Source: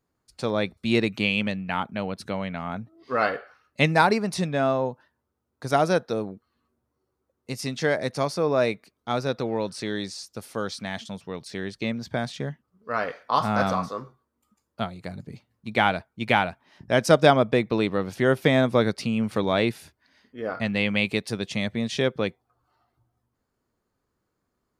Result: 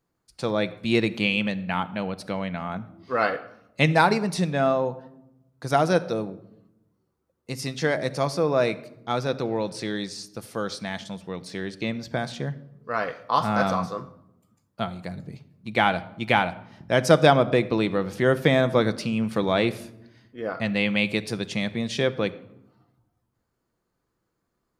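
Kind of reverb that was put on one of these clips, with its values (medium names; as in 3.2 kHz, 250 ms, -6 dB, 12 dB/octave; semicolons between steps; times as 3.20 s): simulated room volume 2800 m³, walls furnished, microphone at 0.75 m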